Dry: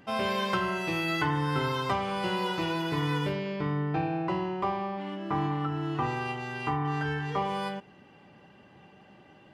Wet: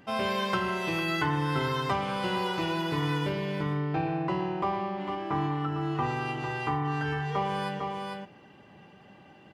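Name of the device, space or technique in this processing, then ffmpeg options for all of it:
ducked delay: -filter_complex "[0:a]asplit=3[a][b][c];[b]adelay=452,volume=-4dB[d];[c]apad=whole_len=440514[e];[d][e]sidechaincompress=threshold=-37dB:ratio=8:attack=32:release=124[f];[a][f]amix=inputs=2:normalize=0"

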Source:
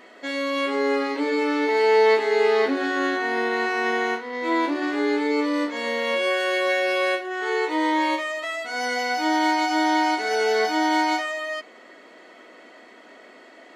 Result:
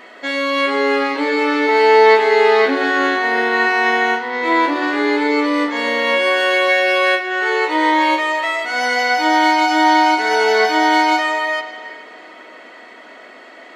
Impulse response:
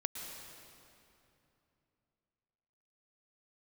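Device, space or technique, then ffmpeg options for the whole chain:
filtered reverb send: -filter_complex "[0:a]asplit=2[a][b];[b]highpass=560,lowpass=4.7k[c];[1:a]atrim=start_sample=2205[d];[c][d]afir=irnorm=-1:irlink=0,volume=-3.5dB[e];[a][e]amix=inputs=2:normalize=0,volume=5dB"

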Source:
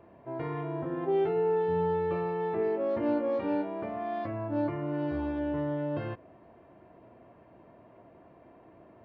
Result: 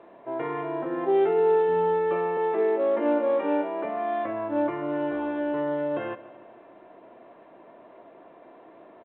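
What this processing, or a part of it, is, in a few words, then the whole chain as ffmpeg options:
telephone: -filter_complex "[0:a]asettb=1/sr,asplit=3[a][b][c];[a]atrim=end=2.374[d];[b]atrim=start=2.37:end=3.85,asetpts=PTS-STARTPTS,afade=t=in:d=0.004:c=qsin,afade=t=out:st=1.476:d=0.004:c=qsin,highpass=f=200:w=0.5412,highpass=f=200:w=1.3066[e];[c]atrim=start=3.846[f];[d][e]acrossfade=d=0.004:c1=hsin:c2=qsin[g];[g][f]acrossfade=d=0.004:c1=qsin:c2=hsin,highpass=330,lowpass=3.3k,aecho=1:1:145|290|435|580|725:0.126|0.0705|0.0395|0.0221|0.0124,volume=7dB" -ar 8000 -c:a pcm_alaw

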